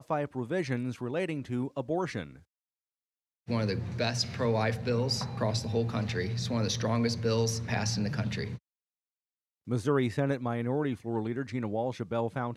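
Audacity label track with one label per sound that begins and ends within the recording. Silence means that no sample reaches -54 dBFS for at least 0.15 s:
3.470000	8.580000	sound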